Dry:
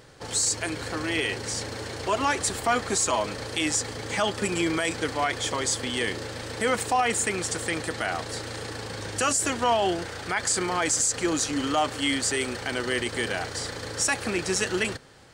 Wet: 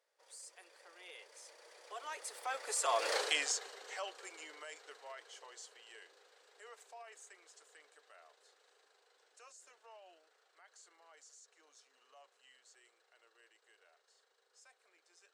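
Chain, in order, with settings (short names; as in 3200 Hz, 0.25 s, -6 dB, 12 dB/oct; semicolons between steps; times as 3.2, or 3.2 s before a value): Doppler pass-by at 3.15, 27 m/s, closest 2.2 m; steep high-pass 440 Hz 36 dB/oct; gain +3 dB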